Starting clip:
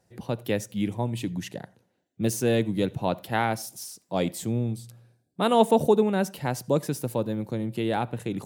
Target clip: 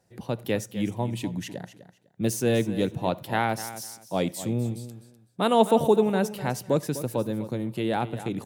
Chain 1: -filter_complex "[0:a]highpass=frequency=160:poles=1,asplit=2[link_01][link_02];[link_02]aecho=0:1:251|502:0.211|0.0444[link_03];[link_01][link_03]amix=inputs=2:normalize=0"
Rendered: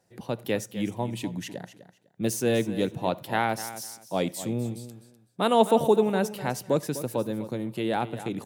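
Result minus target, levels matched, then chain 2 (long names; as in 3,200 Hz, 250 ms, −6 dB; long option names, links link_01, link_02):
125 Hz band −2.5 dB
-filter_complex "[0:a]highpass=frequency=48:poles=1,asplit=2[link_01][link_02];[link_02]aecho=0:1:251|502:0.211|0.0444[link_03];[link_01][link_03]amix=inputs=2:normalize=0"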